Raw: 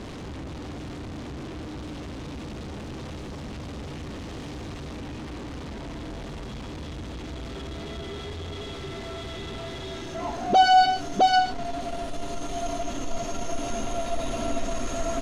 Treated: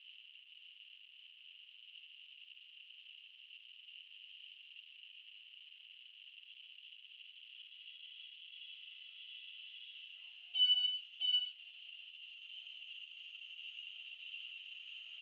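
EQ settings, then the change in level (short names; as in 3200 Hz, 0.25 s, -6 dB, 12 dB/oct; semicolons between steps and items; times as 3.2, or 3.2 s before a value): Butterworth band-pass 2900 Hz, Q 7.5; +1.0 dB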